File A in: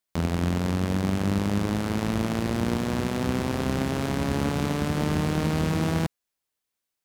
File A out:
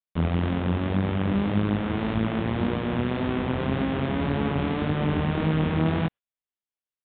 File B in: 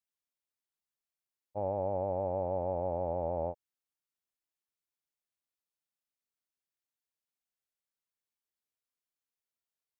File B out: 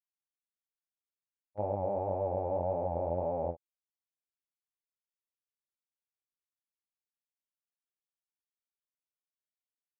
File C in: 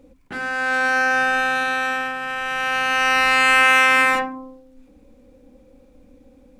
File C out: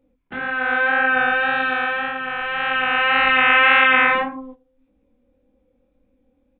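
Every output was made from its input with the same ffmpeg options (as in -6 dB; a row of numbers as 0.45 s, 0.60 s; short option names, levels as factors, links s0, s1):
-af "aresample=8000,aresample=44100,flanger=delay=18.5:depth=6.7:speed=1.8,agate=range=0.2:threshold=0.00891:ratio=16:detection=peak,volume=1.5"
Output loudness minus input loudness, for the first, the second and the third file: +0.5 LU, +0.5 LU, +0.5 LU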